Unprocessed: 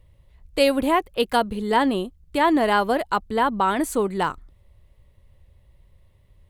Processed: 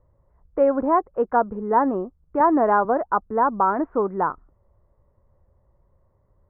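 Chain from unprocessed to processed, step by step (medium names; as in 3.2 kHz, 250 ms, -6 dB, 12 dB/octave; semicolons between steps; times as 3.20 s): steep low-pass 1.4 kHz 36 dB/octave; bass shelf 200 Hz -11.5 dB; 2.40–2.85 s: three bands compressed up and down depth 70%; trim +2.5 dB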